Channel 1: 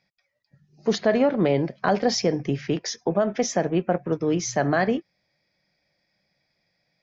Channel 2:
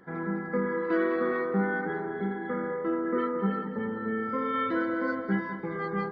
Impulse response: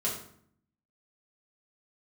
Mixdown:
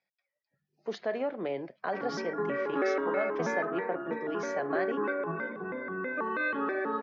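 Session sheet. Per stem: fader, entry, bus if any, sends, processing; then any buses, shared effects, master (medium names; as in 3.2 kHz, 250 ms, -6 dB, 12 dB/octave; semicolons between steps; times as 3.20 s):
-10.5 dB, 0.00 s, no send, no echo send, none
-1.0 dB, 1.85 s, no send, echo send -21 dB, vibrato with a chosen wave square 3.1 Hz, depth 250 cents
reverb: none
echo: delay 81 ms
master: three-band isolator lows -15 dB, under 290 Hz, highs -13 dB, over 3.9 kHz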